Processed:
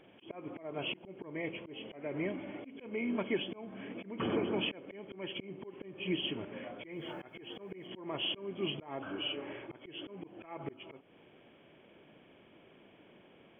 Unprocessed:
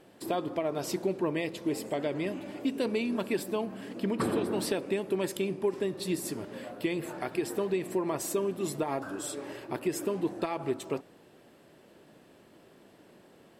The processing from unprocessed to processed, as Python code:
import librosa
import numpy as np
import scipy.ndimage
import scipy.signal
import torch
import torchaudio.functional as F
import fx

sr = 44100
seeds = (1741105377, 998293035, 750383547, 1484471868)

y = fx.freq_compress(x, sr, knee_hz=2100.0, ratio=4.0)
y = fx.quant_dither(y, sr, seeds[0], bits=12, dither='none', at=(6.92, 7.87))
y = fx.auto_swell(y, sr, attack_ms=275.0)
y = y * librosa.db_to_amplitude(-3.0)